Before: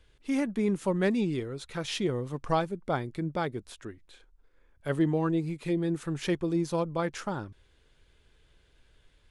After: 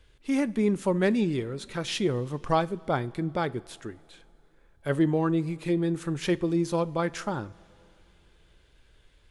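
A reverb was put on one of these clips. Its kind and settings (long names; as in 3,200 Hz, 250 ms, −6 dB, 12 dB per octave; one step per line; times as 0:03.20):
coupled-rooms reverb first 0.31 s, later 3 s, from −16 dB, DRR 16 dB
level +2.5 dB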